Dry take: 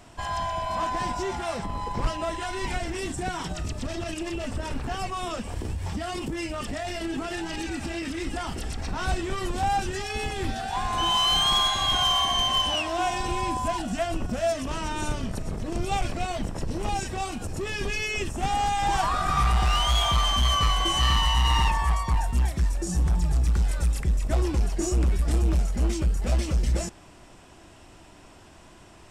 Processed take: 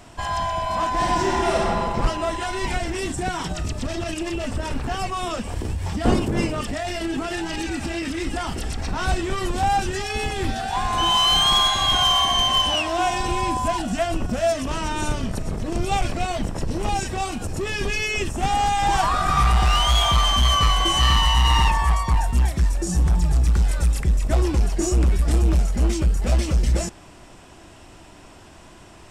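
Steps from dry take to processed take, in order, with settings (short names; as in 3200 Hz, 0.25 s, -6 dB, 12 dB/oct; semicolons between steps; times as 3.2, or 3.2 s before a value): 0.92–1.66 reverb throw, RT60 2.5 s, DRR -3.5 dB; 6.04–6.6 wind noise 310 Hz -27 dBFS; gain +4.5 dB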